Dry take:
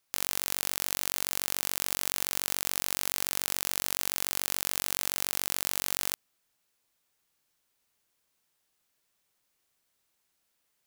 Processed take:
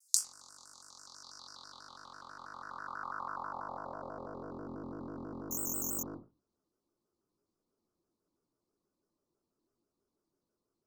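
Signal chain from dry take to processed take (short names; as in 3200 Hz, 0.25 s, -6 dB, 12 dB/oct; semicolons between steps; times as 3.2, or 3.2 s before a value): elliptic band-stop 1300–4500 Hz, stop band 40 dB; treble ducked by the level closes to 1100 Hz, closed at -35.5 dBFS; bell 570 Hz -14.5 dB 2.1 oct; band-pass sweep 7600 Hz -> 380 Hz, 0.83–4.69; frequency shift -25 Hz; reverb RT60 0.25 s, pre-delay 4 ms, DRR -0.5 dB; 5.51–6.03 careless resampling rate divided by 6×, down filtered, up zero stuff; shaped vibrato square 6.1 Hz, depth 160 cents; gain +15 dB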